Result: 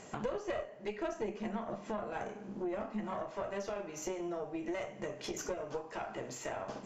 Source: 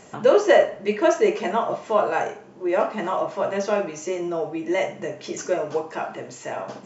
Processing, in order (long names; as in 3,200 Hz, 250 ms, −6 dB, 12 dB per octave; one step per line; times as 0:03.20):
0:01.12–0:03.22: parametric band 210 Hz +14 dB 0.81 octaves
downward compressor 6 to 1, threshold −32 dBFS, peak gain reduction 19.5 dB
tube saturation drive 25 dB, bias 0.75